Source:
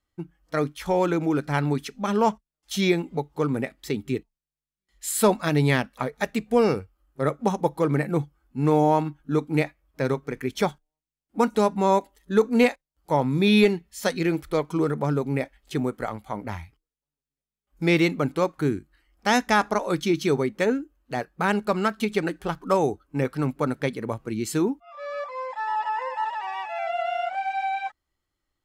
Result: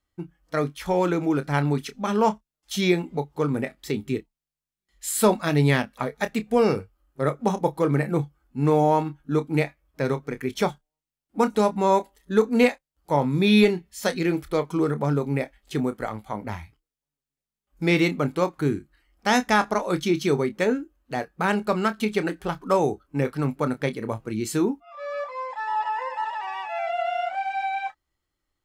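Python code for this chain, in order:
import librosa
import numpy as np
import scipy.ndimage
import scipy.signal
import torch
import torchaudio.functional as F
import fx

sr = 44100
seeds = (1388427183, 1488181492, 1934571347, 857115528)

y = fx.doubler(x, sr, ms=28.0, db=-12.0)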